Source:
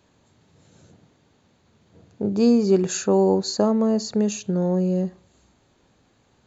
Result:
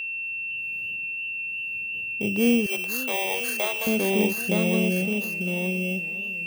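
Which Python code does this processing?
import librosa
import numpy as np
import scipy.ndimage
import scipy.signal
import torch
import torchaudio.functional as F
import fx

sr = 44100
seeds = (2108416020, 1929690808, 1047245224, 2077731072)

p1 = fx.bit_reversed(x, sr, seeds[0], block=16)
p2 = p1 + fx.echo_single(p1, sr, ms=918, db=-4.0, dry=0)
p3 = p2 + 10.0 ** (-25.0 / 20.0) * np.sin(2.0 * np.pi * 2700.0 * np.arange(len(p2)) / sr)
p4 = fx.highpass(p3, sr, hz=600.0, slope=24, at=(2.66, 3.87))
p5 = fx.echo_warbled(p4, sr, ms=505, feedback_pct=53, rate_hz=2.8, cents=153, wet_db=-17.0)
y = F.gain(torch.from_numpy(p5), -3.5).numpy()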